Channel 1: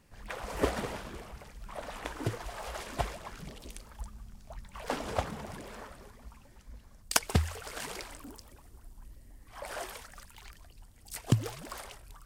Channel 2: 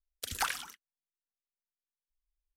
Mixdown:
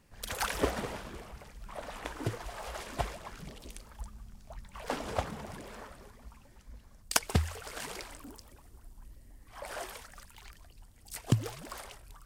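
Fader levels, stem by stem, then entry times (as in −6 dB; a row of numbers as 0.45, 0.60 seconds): −1.0, −1.5 decibels; 0.00, 0.00 seconds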